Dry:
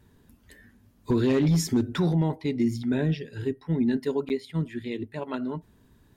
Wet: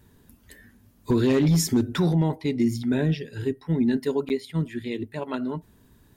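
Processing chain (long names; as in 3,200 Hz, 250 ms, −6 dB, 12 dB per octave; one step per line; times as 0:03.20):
high-shelf EQ 8,000 Hz +7.5 dB
level +2 dB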